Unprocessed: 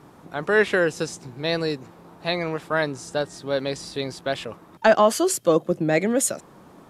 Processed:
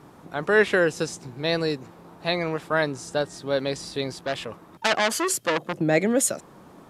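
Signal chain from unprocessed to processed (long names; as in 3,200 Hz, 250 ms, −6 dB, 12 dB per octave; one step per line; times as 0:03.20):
0:04.13–0:05.81: saturating transformer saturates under 3,300 Hz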